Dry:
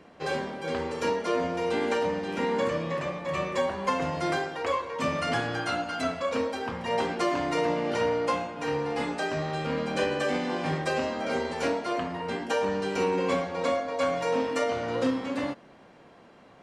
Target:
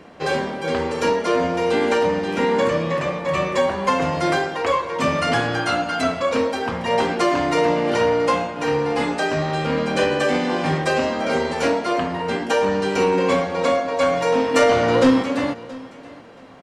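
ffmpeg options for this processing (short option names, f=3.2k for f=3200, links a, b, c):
-filter_complex "[0:a]asettb=1/sr,asplit=3[a][b][c];[a]atrim=end=14.544[d];[b]atrim=start=14.54:end=15.23,asetpts=PTS-STARTPTS,afade=t=in:d=0.004:c=qsin,afade=t=out:st=0.686:d=0.004:c=qsin,acontrast=35[e];[c]atrim=start=15.226[f];[d][e]acrossfade=d=0.004:c1=hsin:c2=qsin[g];[g][f]acrossfade=d=0.004:c1=qsin:c2=hsin,asoftclip=type=tanh:threshold=-15dB,aecho=1:1:676|1352:0.1|0.022,volume=8.5dB"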